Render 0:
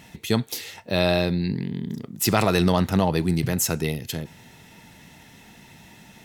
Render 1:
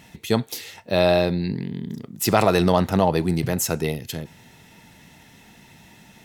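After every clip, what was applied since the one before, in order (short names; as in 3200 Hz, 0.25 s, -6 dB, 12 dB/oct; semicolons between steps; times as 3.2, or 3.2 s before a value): dynamic EQ 650 Hz, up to +6 dB, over -33 dBFS, Q 0.75; gain -1 dB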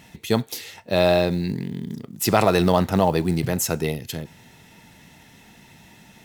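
short-mantissa float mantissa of 4-bit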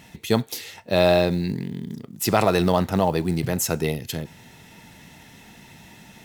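vocal rider within 4 dB 2 s; gain -1.5 dB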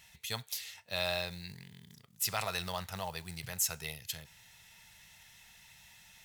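passive tone stack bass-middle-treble 10-0-10; gain -5 dB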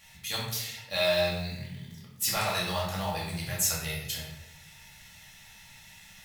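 shoebox room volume 270 m³, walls mixed, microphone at 2.3 m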